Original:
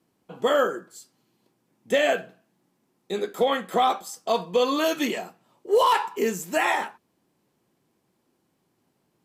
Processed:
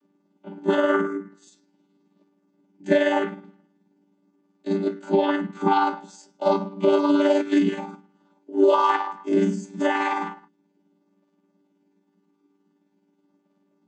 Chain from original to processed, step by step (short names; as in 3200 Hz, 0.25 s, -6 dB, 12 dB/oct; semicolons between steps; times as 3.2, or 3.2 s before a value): chord vocoder bare fifth, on G3; granular stretch 1.5×, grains 0.106 s; gain +4 dB